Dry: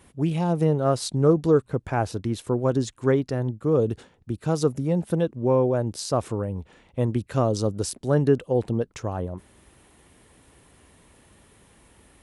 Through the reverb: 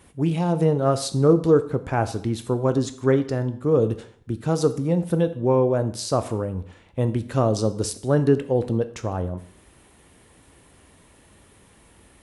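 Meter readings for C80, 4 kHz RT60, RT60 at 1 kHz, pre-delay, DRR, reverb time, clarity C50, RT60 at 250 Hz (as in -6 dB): 17.5 dB, 0.55 s, 0.55 s, 8 ms, 10.0 dB, 0.55 s, 14.5 dB, 0.50 s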